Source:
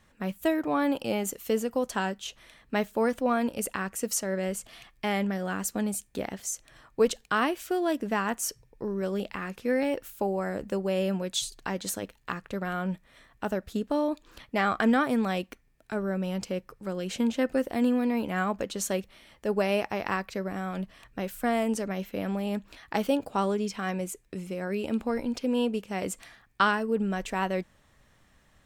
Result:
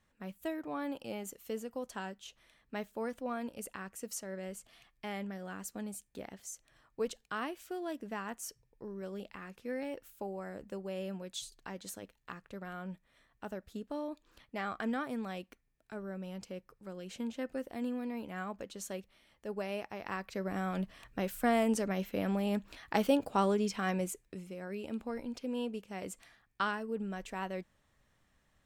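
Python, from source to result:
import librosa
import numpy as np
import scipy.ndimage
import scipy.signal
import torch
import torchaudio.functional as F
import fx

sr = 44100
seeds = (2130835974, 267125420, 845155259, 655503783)

y = fx.gain(x, sr, db=fx.line((19.98, -12.0), (20.57, -2.0), (24.05, -2.0), (24.48, -10.0)))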